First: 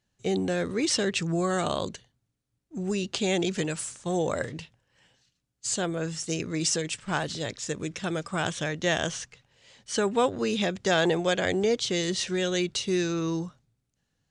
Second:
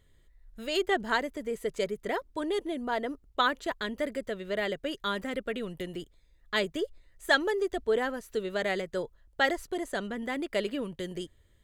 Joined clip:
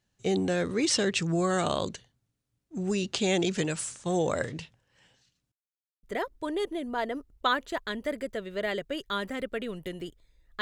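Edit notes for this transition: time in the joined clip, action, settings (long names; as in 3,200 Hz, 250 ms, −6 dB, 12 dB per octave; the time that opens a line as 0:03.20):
first
0:05.52–0:06.03: silence
0:06.03: continue with second from 0:01.97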